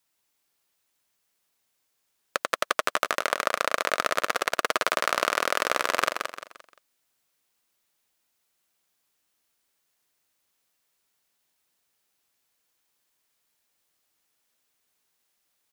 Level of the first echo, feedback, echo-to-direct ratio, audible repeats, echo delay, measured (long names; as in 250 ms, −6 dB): −6.0 dB, 35%, −5.5 dB, 4, 174 ms